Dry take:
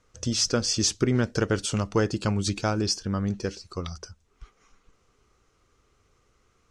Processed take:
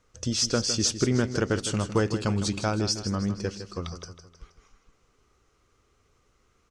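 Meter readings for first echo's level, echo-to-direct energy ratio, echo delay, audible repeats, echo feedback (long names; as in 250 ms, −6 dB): −11.0 dB, −10.0 dB, 158 ms, 4, 47%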